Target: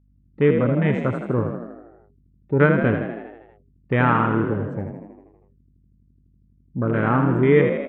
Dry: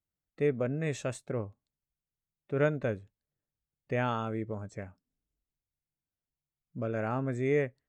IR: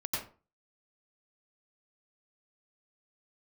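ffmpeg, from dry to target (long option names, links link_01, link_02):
-filter_complex "[0:a]afwtdn=0.01,firequalizer=gain_entry='entry(330,0);entry(650,-9);entry(970,3);entry(5600,-15)':delay=0.05:min_phase=1,acontrast=48,aeval=exprs='val(0)+0.000562*(sin(2*PI*50*n/s)+sin(2*PI*2*50*n/s)/2+sin(2*PI*3*50*n/s)/3+sin(2*PI*4*50*n/s)/4+sin(2*PI*5*50*n/s)/5)':channel_layout=same,asplit=2[link_01][link_02];[link_02]asplit=8[link_03][link_04][link_05][link_06][link_07][link_08][link_09][link_10];[link_03]adelay=80,afreqshift=38,volume=-6.5dB[link_11];[link_04]adelay=160,afreqshift=76,volume=-10.8dB[link_12];[link_05]adelay=240,afreqshift=114,volume=-15.1dB[link_13];[link_06]adelay=320,afreqshift=152,volume=-19.4dB[link_14];[link_07]adelay=400,afreqshift=190,volume=-23.7dB[link_15];[link_08]adelay=480,afreqshift=228,volume=-28dB[link_16];[link_09]adelay=560,afreqshift=266,volume=-32.3dB[link_17];[link_10]adelay=640,afreqshift=304,volume=-36.6dB[link_18];[link_11][link_12][link_13][link_14][link_15][link_16][link_17][link_18]amix=inputs=8:normalize=0[link_19];[link_01][link_19]amix=inputs=2:normalize=0,volume=7dB"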